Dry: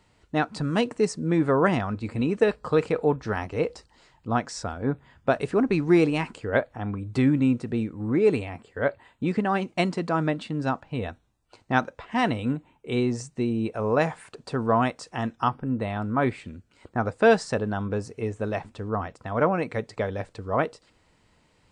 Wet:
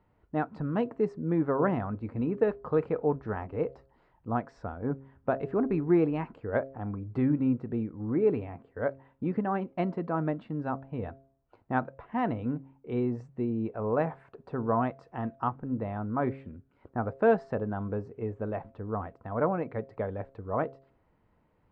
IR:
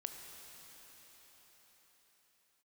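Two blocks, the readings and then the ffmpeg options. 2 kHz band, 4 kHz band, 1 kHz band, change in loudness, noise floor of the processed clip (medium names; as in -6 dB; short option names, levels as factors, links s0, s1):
-10.5 dB, under -20 dB, -5.5 dB, -5.0 dB, -69 dBFS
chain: -af "lowpass=1300,bandreject=f=135:t=h:w=4,bandreject=f=270:t=h:w=4,bandreject=f=405:t=h:w=4,bandreject=f=540:t=h:w=4,bandreject=f=675:t=h:w=4,volume=0.596"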